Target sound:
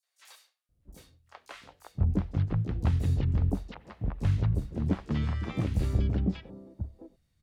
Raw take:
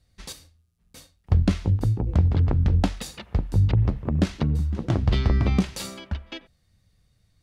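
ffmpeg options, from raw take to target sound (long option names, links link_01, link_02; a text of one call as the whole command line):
ffmpeg -i in.wav -filter_complex "[0:a]acrossover=split=2600[link_01][link_02];[link_02]acompressor=threshold=-43dB:ratio=4:attack=1:release=60[link_03];[link_01][link_03]amix=inputs=2:normalize=0,asplit=2[link_04][link_05];[link_05]asetrate=66075,aresample=44100,atempo=0.66742,volume=-8dB[link_06];[link_04][link_06]amix=inputs=2:normalize=0,acrossover=split=690|5400[link_07][link_08][link_09];[link_08]adelay=30[link_10];[link_07]adelay=690[link_11];[link_11][link_10][link_09]amix=inputs=3:normalize=0,volume=-7dB" out.wav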